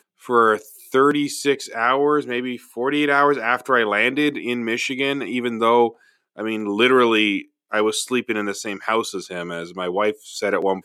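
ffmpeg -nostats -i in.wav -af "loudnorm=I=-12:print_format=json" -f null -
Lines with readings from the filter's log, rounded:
"input_i" : "-20.9",
"input_tp" : "-2.5",
"input_lra" : "4.4",
"input_thresh" : "-31.0",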